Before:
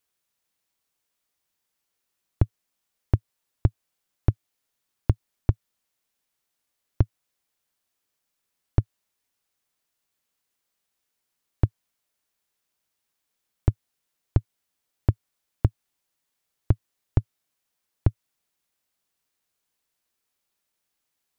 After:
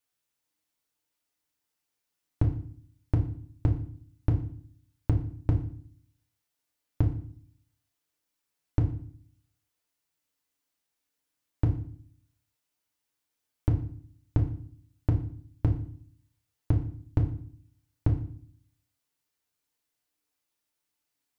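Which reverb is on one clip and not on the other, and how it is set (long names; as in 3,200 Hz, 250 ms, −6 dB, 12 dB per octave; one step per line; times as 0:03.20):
feedback delay network reverb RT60 0.52 s, low-frequency decay 1.5×, high-frequency decay 0.95×, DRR 0.5 dB
level −6 dB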